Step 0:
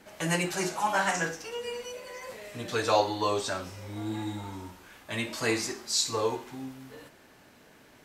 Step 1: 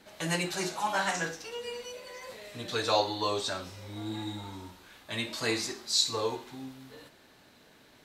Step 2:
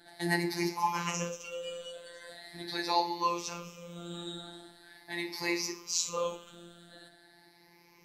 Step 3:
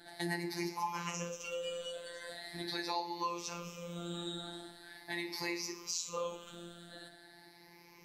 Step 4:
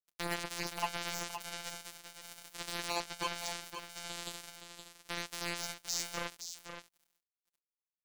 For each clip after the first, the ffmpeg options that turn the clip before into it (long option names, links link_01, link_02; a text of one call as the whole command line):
ffmpeg -i in.wav -af "equalizer=frequency=3900:width_type=o:width=0.47:gain=8,volume=-3dB" out.wav
ffmpeg -i in.wav -af "afftfilt=real='re*pow(10,17/40*sin(2*PI*(0.8*log(max(b,1)*sr/1024/100)/log(2)-(0.42)*(pts-256)/sr)))':imag='im*pow(10,17/40*sin(2*PI*(0.8*log(max(b,1)*sr/1024/100)/log(2)-(0.42)*(pts-256)/sr)))':win_size=1024:overlap=0.75,afftfilt=real='hypot(re,im)*cos(PI*b)':imag='0':win_size=1024:overlap=0.75,volume=-2dB" out.wav
ffmpeg -i in.wav -af "acompressor=threshold=-38dB:ratio=3,volume=2dB" out.wav
ffmpeg -i in.wav -filter_complex "[0:a]acrusher=bits=4:mix=0:aa=0.5,asplit=2[link_01][link_02];[link_02]aecho=0:1:518:0.376[link_03];[link_01][link_03]amix=inputs=2:normalize=0,volume=2dB" out.wav